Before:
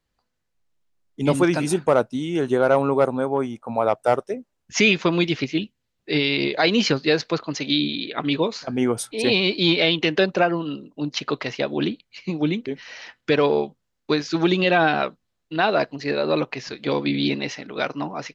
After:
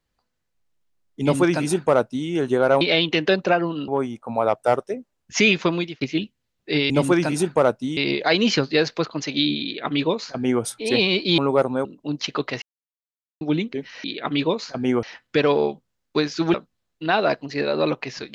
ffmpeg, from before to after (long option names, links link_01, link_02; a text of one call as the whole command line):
ffmpeg -i in.wav -filter_complex "[0:a]asplit=13[link_01][link_02][link_03][link_04][link_05][link_06][link_07][link_08][link_09][link_10][link_11][link_12][link_13];[link_01]atrim=end=2.812[link_14];[link_02]atrim=start=9.708:end=10.782[link_15];[link_03]atrim=start=3.278:end=5.41,asetpts=PTS-STARTPTS,afade=type=out:start_time=1.772:duration=0.36[link_16];[link_04]atrim=start=5.41:end=6.302,asetpts=PTS-STARTPTS,afade=type=in:duration=0.004:curve=hsin[link_17];[link_05]atrim=start=1.208:end=2.282[link_18];[link_06]atrim=start=6.298:end=9.712[link_19];[link_07]atrim=start=2.808:end=3.282[link_20];[link_08]atrim=start=10.778:end=11.55,asetpts=PTS-STARTPTS,afade=type=out:start_time=0.768:duration=0.004:curve=hsin[link_21];[link_09]atrim=start=11.55:end=12.34,asetpts=PTS-STARTPTS,volume=0[link_22];[link_10]atrim=start=12.34:end=12.972,asetpts=PTS-STARTPTS,afade=type=in:duration=0.004:curve=hsin[link_23];[link_11]atrim=start=7.968:end=8.962[link_24];[link_12]atrim=start=12.968:end=14.482[link_25];[link_13]atrim=start=15.038[link_26];[link_14][link_15]acrossfade=duration=0.004:curve1=hsin:curve2=hsin[link_27];[link_16][link_17]concat=n=2:v=0:a=1[link_28];[link_27][link_28]acrossfade=duration=0.004:curve1=hsin:curve2=hsin[link_29];[link_29][link_18]acrossfade=duration=0.004:curve1=hsin:curve2=hsin[link_30];[link_30][link_19]acrossfade=duration=0.004:curve1=hsin:curve2=hsin[link_31];[link_31][link_20]acrossfade=duration=0.004:curve1=hsin:curve2=hsin[link_32];[link_21][link_22][link_23]concat=n=3:v=0:a=1[link_33];[link_32][link_33]acrossfade=duration=0.004:curve1=hsin:curve2=hsin[link_34];[link_34][link_24]acrossfade=duration=0.004:curve1=hsin:curve2=hsin[link_35];[link_35][link_25]acrossfade=duration=0.004:curve1=hsin:curve2=hsin[link_36];[link_36][link_26]acrossfade=duration=0.004:curve1=hsin:curve2=hsin" out.wav